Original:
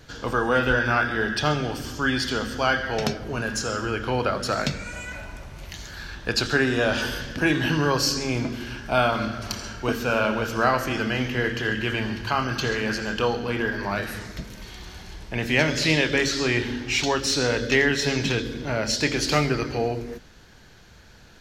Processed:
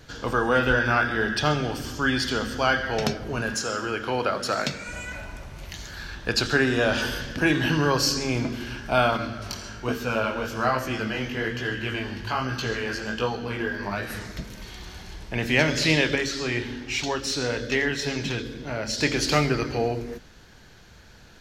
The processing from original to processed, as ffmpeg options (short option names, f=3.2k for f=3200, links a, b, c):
-filter_complex "[0:a]asettb=1/sr,asplit=3[a][b][c];[a]atrim=end=3.544[d];[b]atrim=start=3.54:end=4.88,asetpts=PTS-STARTPTS,afade=t=in:d=0.004:c=qsin,afade=t=out:st=1.336:d=0.004:c=qsin,highpass=f=240:p=1[e];[c]atrim=start=4.876[f];[d][e]acrossfade=d=0.004:c1=hsin:c2=qsin[g];[g][f]acrossfade=d=0.004:c1=qsin:c2=hsin,asettb=1/sr,asplit=3[h][i][j];[h]atrim=end=9.174[k];[i]atrim=start=9.17:end=14.1,asetpts=PTS-STARTPTS,afade=t=in:d=0.004:c=qsin,afade=t=out:st=4.926:d=0.004:c=qsin,flanger=delay=15.5:depth=5.8:speed=1.2[l];[j]atrim=start=14.096[m];[k][l]acrossfade=d=0.004:c1=hsin:c2=qsin[n];[n][m]acrossfade=d=0.004:c1=qsin:c2=hsin,asettb=1/sr,asplit=3[o][p][q];[o]atrim=end=16.154[r];[p]atrim=start=16.15:end=18.98,asetpts=PTS-STARTPTS,afade=t=in:d=0.004:c=qsin,afade=t=out:st=2.826:d=0.004:c=qsin,flanger=delay=0.8:depth=7.8:regen=-69:speed=1.1:shape=triangular[s];[q]atrim=start=18.976[t];[r][s]acrossfade=d=0.004:c1=hsin:c2=qsin[u];[u][t]acrossfade=d=0.004:c1=qsin:c2=hsin"